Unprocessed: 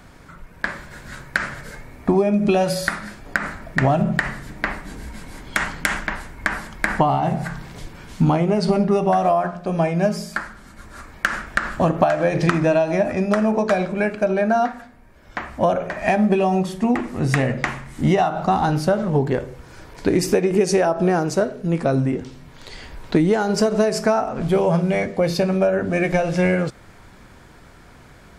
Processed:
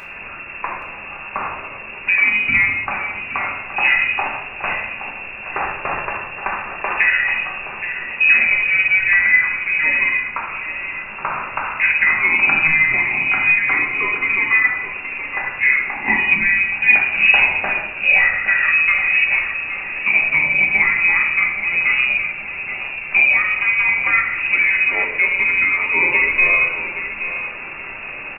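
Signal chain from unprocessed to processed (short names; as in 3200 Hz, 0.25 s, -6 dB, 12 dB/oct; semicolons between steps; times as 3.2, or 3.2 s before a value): delta modulation 64 kbps, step -28.5 dBFS; inverted band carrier 2700 Hz; 16.72–17.4 high shelf 2100 Hz +8 dB; feedback echo 0.822 s, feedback 34%, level -11 dB; reverb RT60 0.85 s, pre-delay 5 ms, DRR -0.5 dB; gain -1.5 dB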